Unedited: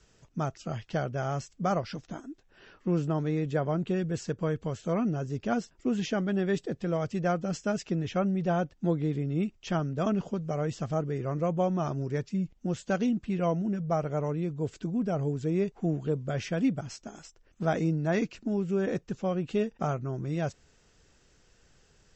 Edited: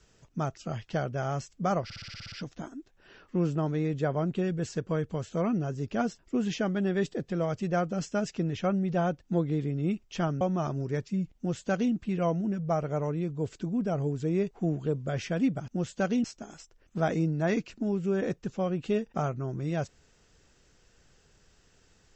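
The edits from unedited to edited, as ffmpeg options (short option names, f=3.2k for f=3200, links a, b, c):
-filter_complex "[0:a]asplit=12[a][b][c][d][e][f][g][h][i][j][k][l];[a]atrim=end=1.902[m];[b]atrim=start=1.838:end=1.902[n];[c]atrim=start=1.838:end=1.902[o];[d]atrim=start=1.838:end=1.902[p];[e]atrim=start=1.838:end=1.902[q];[f]atrim=start=1.838:end=1.902[r];[g]atrim=start=1.838:end=1.902[s];[h]atrim=start=1.838:end=1.902[t];[i]atrim=start=1.838:end=9.932[u];[j]atrim=start=11.618:end=16.892[v];[k]atrim=start=12.578:end=13.142[w];[l]atrim=start=16.888[x];[m][n]acrossfade=d=0.004:c1=hsin:c2=hsin[y];[y][o]acrossfade=d=0.004:c1=hsin:c2=hsin[z];[z][p]acrossfade=d=0.004:c1=hsin:c2=hsin[aa];[aa][q]acrossfade=d=0.004:c1=hsin:c2=hsin[ab];[ab][r]acrossfade=d=0.004:c1=hsin:c2=hsin[ac];[ac][s]acrossfade=d=0.004:c1=hsin:c2=hsin[ad];[ad][t]acrossfade=d=0.004:c1=hsin:c2=hsin[ae];[ae][u]acrossfade=d=0.004:c1=hsin:c2=hsin[af];[af][v]acrossfade=d=0.004:c1=hsin:c2=hsin[ag];[ag][w]acrossfade=d=0.004:c1=hsin:c2=hsin[ah];[ah][x]acrossfade=d=0.004:c1=hsin:c2=hsin"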